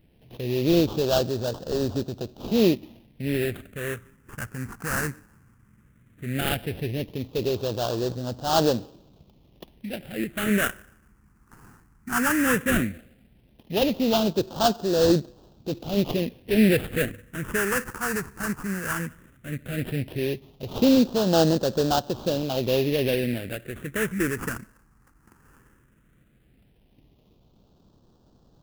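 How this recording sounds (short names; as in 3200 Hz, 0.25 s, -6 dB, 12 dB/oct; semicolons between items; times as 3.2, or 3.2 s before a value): aliases and images of a low sample rate 2200 Hz, jitter 20%; phasing stages 4, 0.15 Hz, lowest notch 580–2100 Hz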